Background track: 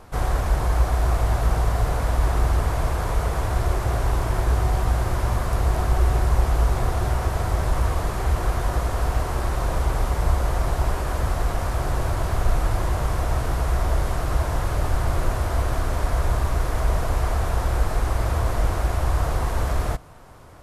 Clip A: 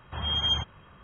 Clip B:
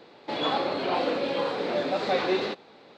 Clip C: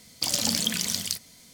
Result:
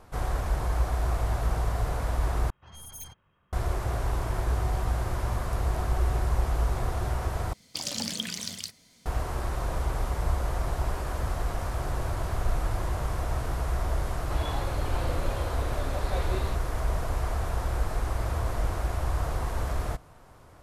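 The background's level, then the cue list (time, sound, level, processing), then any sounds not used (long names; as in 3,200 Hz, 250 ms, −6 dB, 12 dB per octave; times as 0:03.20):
background track −6.5 dB
0:02.50: overwrite with A −16.5 dB + stylus tracing distortion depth 0.33 ms
0:07.53: overwrite with C −5 dB + high-shelf EQ 9,900 Hz −11.5 dB
0:10.73: mix in C −17.5 dB + downward compressor 4 to 1, threshold −44 dBFS
0:14.02: mix in B −11 dB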